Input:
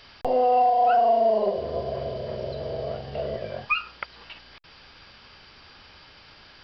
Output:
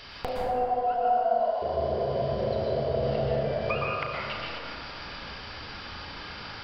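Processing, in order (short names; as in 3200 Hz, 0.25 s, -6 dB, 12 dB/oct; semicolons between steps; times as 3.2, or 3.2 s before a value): 1.19–1.62 elliptic high-pass 570 Hz; compressor 12:1, threshold -35 dBFS, peak gain reduction 18.5 dB; flutter echo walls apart 6.3 m, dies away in 0.2 s; plate-style reverb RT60 2.9 s, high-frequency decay 0.3×, pre-delay 0.105 s, DRR -4.5 dB; gain +4.5 dB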